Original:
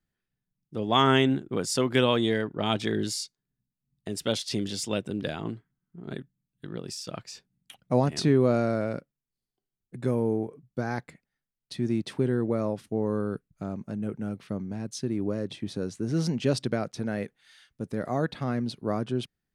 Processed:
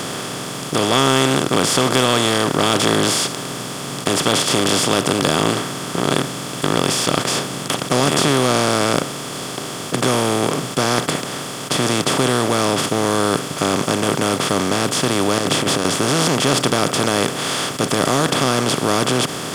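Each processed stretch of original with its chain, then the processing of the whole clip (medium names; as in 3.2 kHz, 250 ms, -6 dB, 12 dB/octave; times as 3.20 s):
15.38–15.85 s: compressor with a negative ratio -37 dBFS, ratio -0.5 + loudspeaker Doppler distortion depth 0.21 ms
whole clip: spectral levelling over time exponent 0.2; treble shelf 6 kHz +11 dB; waveshaping leveller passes 1; trim -3.5 dB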